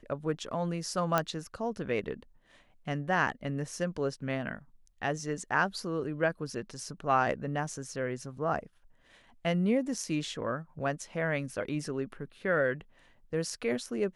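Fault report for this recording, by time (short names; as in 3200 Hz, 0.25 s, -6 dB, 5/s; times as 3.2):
1.18 pop -12 dBFS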